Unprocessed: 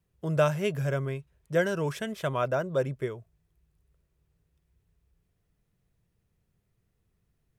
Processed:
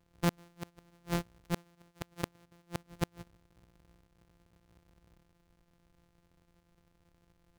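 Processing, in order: sample sorter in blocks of 256 samples; flipped gate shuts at -23 dBFS, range -40 dB; gain +4.5 dB

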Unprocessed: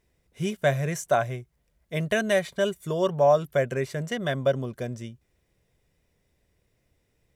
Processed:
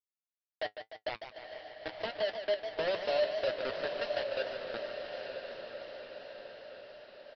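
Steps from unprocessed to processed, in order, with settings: Doppler pass-by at 3.21, 15 m/s, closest 7.7 m; steep high-pass 300 Hz 96 dB/oct; spectral gate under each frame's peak -20 dB strong; bell 590 Hz +10.5 dB 0.58 oct; compressor 2.5:1, threshold -33 dBFS, peak gain reduction 17.5 dB; bit-crush 5-bit; flange 1.7 Hz, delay 9.1 ms, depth 1 ms, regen +52%; on a send: diffused feedback echo 0.947 s, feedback 56%, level -6.5 dB; on the sum: downsampling 11025 Hz; warbling echo 0.149 s, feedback 66%, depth 115 cents, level -9 dB

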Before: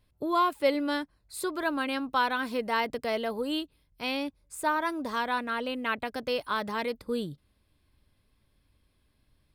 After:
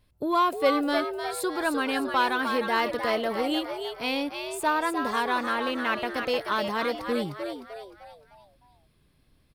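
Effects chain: in parallel at -7 dB: soft clip -24.5 dBFS, distortion -13 dB; on the sum: frequency-shifting echo 0.305 s, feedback 45%, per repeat +100 Hz, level -6.5 dB

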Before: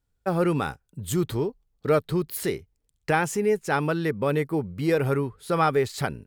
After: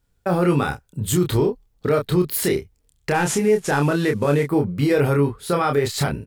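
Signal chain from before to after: 3.14–4.46 CVSD 64 kbps; limiter -20.5 dBFS, peak gain reduction 10.5 dB; doubler 28 ms -4 dB; gain +8 dB

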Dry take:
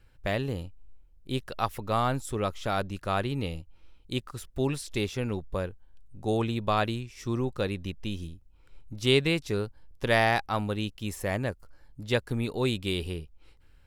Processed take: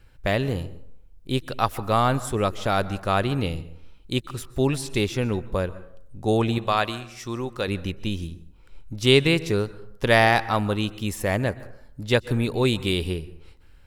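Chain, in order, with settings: 6.58–7.68 low shelf 430 Hz -10 dB; plate-style reverb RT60 0.68 s, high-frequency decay 0.5×, pre-delay 0.115 s, DRR 17 dB; gain +6 dB

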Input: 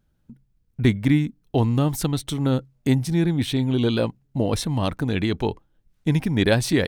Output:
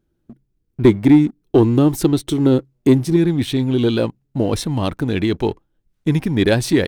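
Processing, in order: bell 350 Hz +15 dB 0.63 oct, from 3.16 s +5 dB; sample leveller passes 1; gain -1.5 dB

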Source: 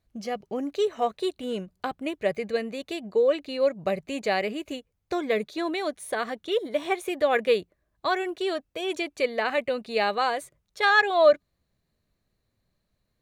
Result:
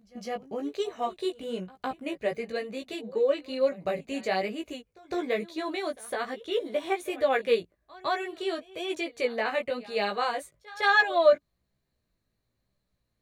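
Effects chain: pre-echo 0.158 s -21 dB; chorus 1.1 Hz, delay 15 ms, depth 3.6 ms

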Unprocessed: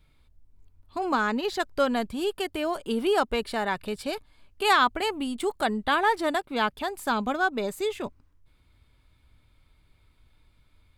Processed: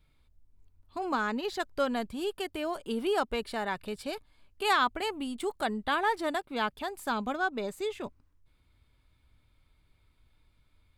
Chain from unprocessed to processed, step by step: 7.35–8.03 high shelf 11000 Hz -7 dB; gain -5 dB

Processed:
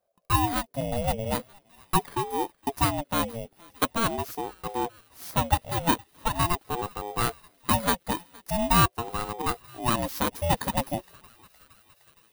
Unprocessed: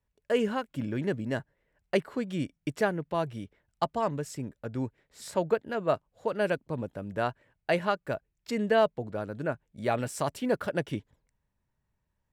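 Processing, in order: FFT order left unsorted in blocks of 16 samples; thinning echo 0.465 s, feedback 75%, high-pass 530 Hz, level -24 dB; ring modulator with a swept carrier 480 Hz, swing 30%, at 0.43 Hz; gain +6 dB

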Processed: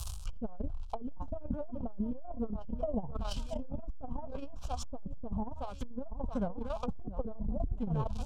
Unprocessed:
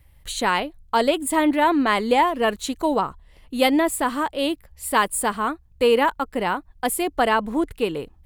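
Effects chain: tracing distortion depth 0.17 ms; tone controls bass +13 dB, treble +6 dB; crackle 190/s -36 dBFS; on a send: feedback echo 0.676 s, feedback 36%, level -16 dB; on the sum: formant shift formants -5 st; high shelf 2200 Hz +7.5 dB; fixed phaser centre 790 Hz, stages 4; treble ducked by the level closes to 400 Hz, closed at -19 dBFS; notch 2200 Hz, Q 11; reverse; compressor 10:1, threshold -30 dBFS, peak gain reduction 14 dB; reverse; core saturation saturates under 72 Hz; gain +4 dB

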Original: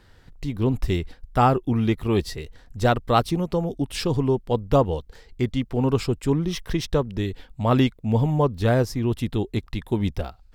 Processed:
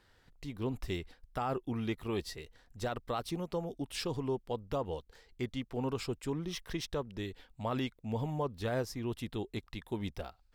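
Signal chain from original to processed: low shelf 300 Hz -8 dB; limiter -16.5 dBFS, peak gain reduction 9.5 dB; gain -8.5 dB

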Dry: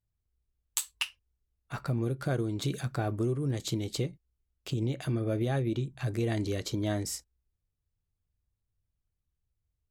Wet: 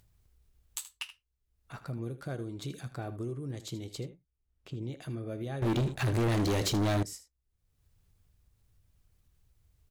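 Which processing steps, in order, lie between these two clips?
upward compressor, threshold -40 dBFS; 4–4.82 high shelf 2900 Hz -> 4200 Hz -12 dB; echo 78 ms -14 dB; 5.62–7.03 sample leveller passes 5; gain -7.5 dB

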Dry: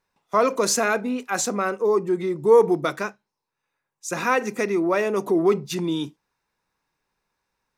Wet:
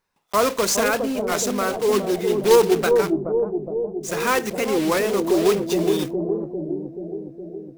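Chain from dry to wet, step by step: block floating point 3-bit; analogue delay 0.415 s, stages 2048, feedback 66%, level -3.5 dB; record warp 33 1/3 rpm, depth 160 cents

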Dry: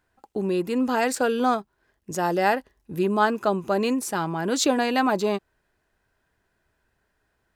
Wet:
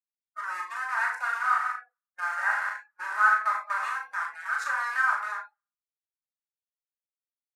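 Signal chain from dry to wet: 1.23–3.34 multi-head echo 92 ms, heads first and second, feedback 51%, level -8.5 dB; sample gate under -20.5 dBFS; HPF 1200 Hz 24 dB/oct; doubler 36 ms -7 dB; gate -41 dBFS, range -20 dB; LPF 11000 Hz 24 dB/oct; resonant high shelf 2200 Hz -13 dB, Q 3; shoebox room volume 920 m³, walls furnished, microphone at 2.7 m; spectral noise reduction 29 dB; vocal rider within 3 dB 2 s; gain -4.5 dB

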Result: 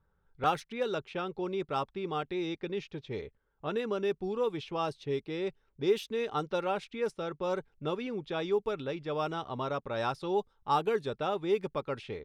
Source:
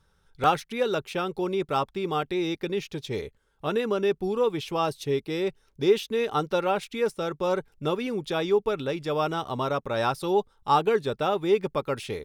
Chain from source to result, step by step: low-pass opened by the level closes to 1500 Hz, open at -18.5 dBFS; gain -6.5 dB

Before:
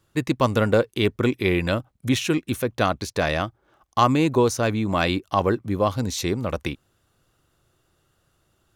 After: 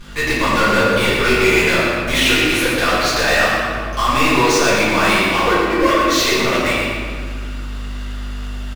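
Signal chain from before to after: 5.46–6.08 sine-wave speech; limiter -11.5 dBFS, peak gain reduction 8 dB; band-pass 2500 Hz, Q 0.98; soft clip -28.5 dBFS, distortion -9 dB; hum 50 Hz, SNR 27 dB; power-law curve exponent 0.5; 1.05–1.45 doubler 21 ms -4 dB; feedback echo 0.116 s, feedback 41%, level -6.5 dB; reverb RT60 1.9 s, pre-delay 5 ms, DRR -10 dB; gain +8 dB

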